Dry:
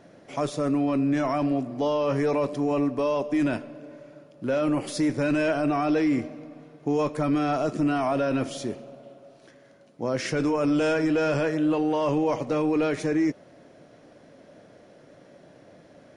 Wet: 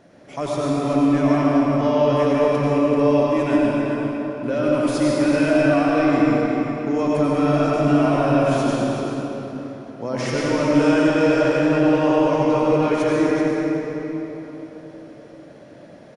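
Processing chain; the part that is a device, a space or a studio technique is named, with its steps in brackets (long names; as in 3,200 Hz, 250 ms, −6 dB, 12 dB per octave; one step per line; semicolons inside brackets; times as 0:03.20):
cave (single-tap delay 385 ms −10 dB; convolution reverb RT60 3.8 s, pre-delay 83 ms, DRR −5.5 dB)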